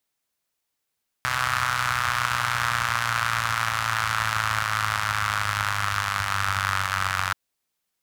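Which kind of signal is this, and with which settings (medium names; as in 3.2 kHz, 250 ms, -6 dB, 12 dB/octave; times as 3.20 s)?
four-cylinder engine model, changing speed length 6.08 s, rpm 3800, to 2800, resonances 95/1300 Hz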